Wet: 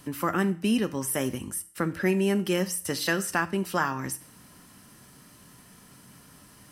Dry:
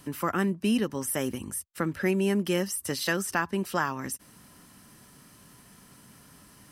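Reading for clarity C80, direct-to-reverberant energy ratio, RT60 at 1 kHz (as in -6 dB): 20.5 dB, 11.0 dB, 0.45 s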